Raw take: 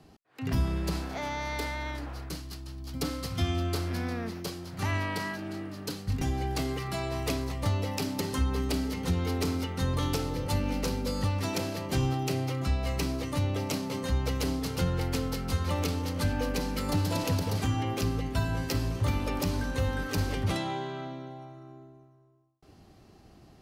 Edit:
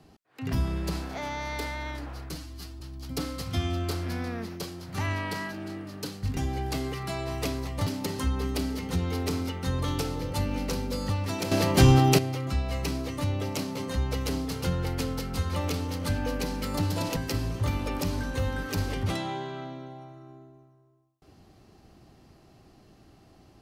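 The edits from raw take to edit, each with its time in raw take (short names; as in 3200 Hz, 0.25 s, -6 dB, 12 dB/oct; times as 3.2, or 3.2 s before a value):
2.34–2.65 stretch 1.5×
7.71–8.01 cut
11.66–12.33 gain +10.5 dB
17.31–18.57 cut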